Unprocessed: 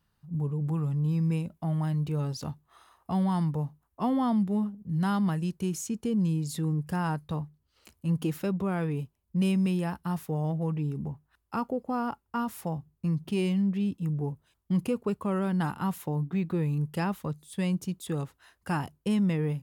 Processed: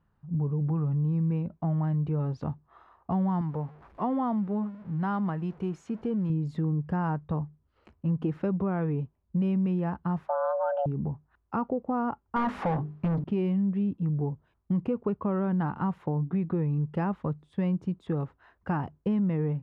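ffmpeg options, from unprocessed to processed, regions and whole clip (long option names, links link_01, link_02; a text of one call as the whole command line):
ffmpeg -i in.wav -filter_complex "[0:a]asettb=1/sr,asplit=3[link_01][link_02][link_03];[link_01]atrim=end=3.414[link_04];[link_02]atrim=start=3.41:end=6.3,asetpts=PTS-STARTPTS,afade=type=in:duration=0.004:curve=qsin,afade=type=out:start_time=2.886:duration=0.004:curve=qsin,aeval=exprs='val(0)+0.5*0.00501*sgn(val(0))':channel_layout=same,lowshelf=frequency=260:gain=-9[link_05];[link_03]atrim=start=6.296[link_06];[link_04][link_05]acrossfade=duration=0.004:curve1=hsin:curve2=qsin[link_07];[link_07][link_06]acrossfade=duration=0.004:curve1=qsin:curve2=hsin,asettb=1/sr,asplit=3[link_08][link_09][link_10];[link_08]atrim=end=10.284[link_11];[link_09]atrim=start=10.28:end=10.86,asetpts=PTS-STARTPTS,afade=type=in:duration=0.004:curve=qsin,afade=type=out:start_time=0.576:duration=0.004:curve=qsin,highpass=120,equalizer=frequency=250:width_type=q:width=4:gain=9,equalizer=frequency=1100:width_type=q:width=4:gain=10,equalizer=frequency=2600:width_type=q:width=4:gain=4,lowpass=frequency=4600:width=0.5412,lowpass=frequency=4600:width=1.3066,afreqshift=410,asuperstop=centerf=2200:order=4:qfactor=4.4[link_12];[link_10]atrim=start=10.856[link_13];[link_11][link_12]acrossfade=duration=0.004:curve1=hsin:curve2=qsin[link_14];[link_14][link_13]acrossfade=duration=0.004:curve1=qsin:curve2=hsin,asettb=1/sr,asplit=3[link_15][link_16][link_17];[link_15]atrim=end=12.364[link_18];[link_16]atrim=start=12.36:end=13.24,asetpts=PTS-STARTPTS,afade=type=in:duration=0.004:curve=qsin,afade=type=out:start_time=0.876:duration=0.004:curve=qsin,bandreject=frequency=50:width_type=h:width=6,bandreject=frequency=100:width_type=h:width=6,bandreject=frequency=150:width_type=h:width=6,bandreject=frequency=200:width_type=h:width=6,bandreject=frequency=250:width_type=h:width=6,bandreject=frequency=300:width_type=h:width=6,bandreject=frequency=350:width_type=h:width=6,bandreject=frequency=400:width_type=h:width=6,bandreject=frequency=450:width_type=h:width=6,asplit=2[link_19][link_20];[link_20]highpass=frequency=720:poles=1,volume=30dB,asoftclip=type=tanh:threshold=-20.5dB[link_21];[link_19][link_21]amix=inputs=2:normalize=0,lowpass=frequency=6100:poles=1,volume=-6dB[link_22];[link_17]atrim=start=13.236[link_23];[link_18][link_22]acrossfade=duration=0.004:curve1=hsin:curve2=qsin[link_24];[link_24][link_23]acrossfade=duration=0.004:curve1=qsin:curve2=hsin,lowpass=1400,acompressor=threshold=-29dB:ratio=3,volume=4dB" out.wav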